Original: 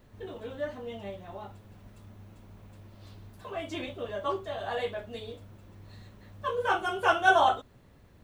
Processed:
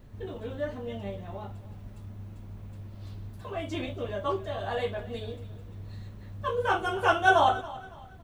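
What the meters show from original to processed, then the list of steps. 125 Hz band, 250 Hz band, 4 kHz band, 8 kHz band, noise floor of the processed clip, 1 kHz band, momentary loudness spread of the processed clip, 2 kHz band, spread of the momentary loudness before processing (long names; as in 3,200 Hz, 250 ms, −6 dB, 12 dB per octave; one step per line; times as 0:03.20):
+8.5 dB, +3.5 dB, 0.0 dB, can't be measured, −46 dBFS, +0.5 dB, 21 LU, 0.0 dB, 21 LU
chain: low-shelf EQ 220 Hz +9.5 dB
on a send: repeating echo 279 ms, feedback 34%, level −18 dB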